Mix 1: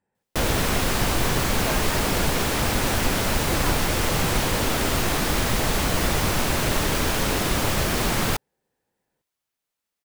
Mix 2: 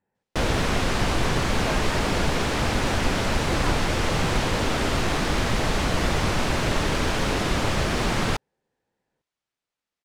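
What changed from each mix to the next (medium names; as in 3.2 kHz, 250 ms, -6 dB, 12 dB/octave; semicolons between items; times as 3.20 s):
master: add distance through air 67 m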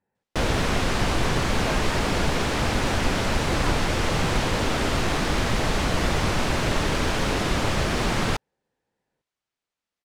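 speech: send -6.5 dB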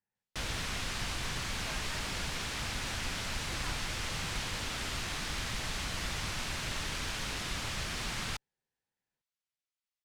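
speech: send +11.0 dB; master: add amplifier tone stack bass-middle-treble 5-5-5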